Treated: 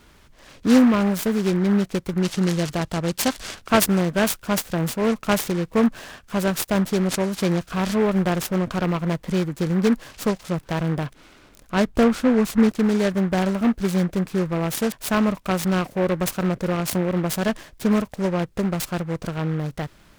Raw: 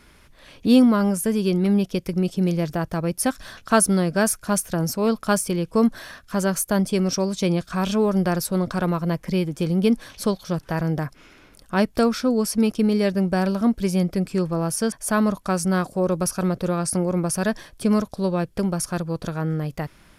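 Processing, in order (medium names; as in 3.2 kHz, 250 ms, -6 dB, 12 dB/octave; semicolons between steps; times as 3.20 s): 2.22–3.55 s: time-frequency box 2.7–5.7 kHz +11 dB; 11.87–12.69 s: tilt EQ -1.5 dB/octave; delay time shaken by noise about 1.2 kHz, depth 0.067 ms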